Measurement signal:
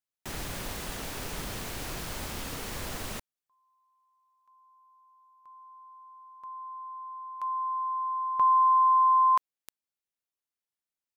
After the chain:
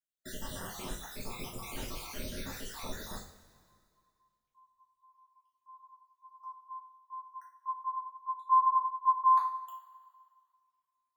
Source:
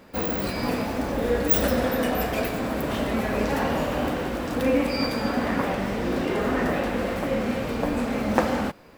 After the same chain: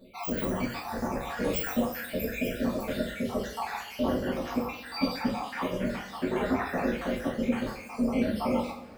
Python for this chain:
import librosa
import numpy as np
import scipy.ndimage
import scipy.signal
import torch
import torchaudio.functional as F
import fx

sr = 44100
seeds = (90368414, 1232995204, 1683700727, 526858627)

y = fx.spec_dropout(x, sr, seeds[0], share_pct=68)
y = fx.rev_double_slope(y, sr, seeds[1], early_s=0.41, late_s=2.1, knee_db=-18, drr_db=-5.5)
y = F.gain(torch.from_numpy(y), -7.0).numpy()